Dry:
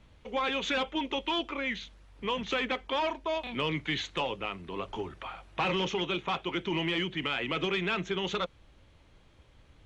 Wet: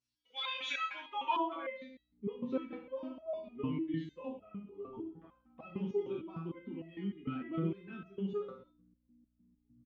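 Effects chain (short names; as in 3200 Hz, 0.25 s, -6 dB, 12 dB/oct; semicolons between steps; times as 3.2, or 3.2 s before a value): per-bin expansion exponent 1.5; hum 60 Hz, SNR 23 dB; on a send: reverse bouncing-ball echo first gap 30 ms, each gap 1.25×, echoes 5; on the sum: band-pass sweep 5900 Hz -> 240 Hz, 0.02–2.39; stepped resonator 6.6 Hz 130–650 Hz; gain +18 dB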